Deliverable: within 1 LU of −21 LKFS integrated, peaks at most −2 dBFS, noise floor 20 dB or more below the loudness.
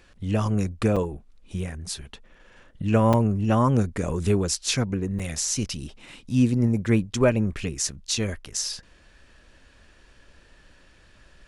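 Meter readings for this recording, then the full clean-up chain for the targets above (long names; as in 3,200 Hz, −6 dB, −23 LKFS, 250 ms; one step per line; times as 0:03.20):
number of dropouts 3; longest dropout 5.6 ms; integrated loudness −24.5 LKFS; sample peak −8.0 dBFS; target loudness −21.0 LKFS
→ repair the gap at 0:00.96/0:03.13/0:05.19, 5.6 ms
level +3.5 dB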